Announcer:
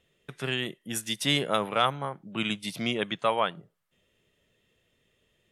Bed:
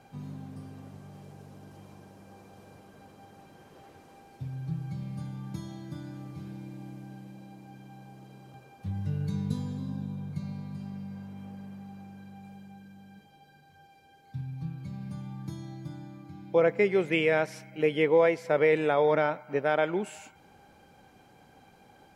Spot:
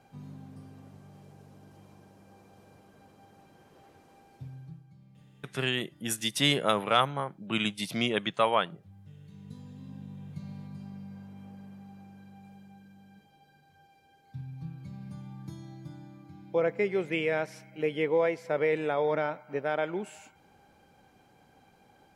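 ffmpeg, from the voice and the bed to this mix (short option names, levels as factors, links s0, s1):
-filter_complex "[0:a]adelay=5150,volume=1.06[s0];[1:a]volume=3.55,afade=t=out:st=4.38:d=0.46:silence=0.177828,afade=t=in:st=9.31:d=1.31:silence=0.16788[s1];[s0][s1]amix=inputs=2:normalize=0"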